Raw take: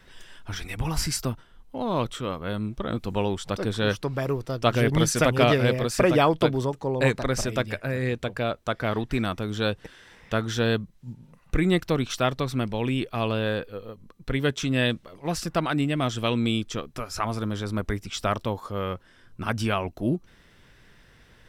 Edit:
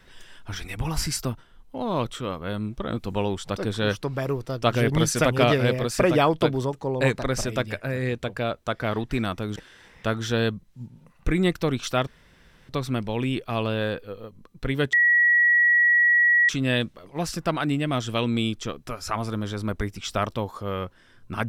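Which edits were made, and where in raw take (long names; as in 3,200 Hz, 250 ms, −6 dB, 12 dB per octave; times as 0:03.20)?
0:09.56–0:09.83: remove
0:12.34: splice in room tone 0.62 s
0:14.58: insert tone 1,920 Hz −15 dBFS 1.56 s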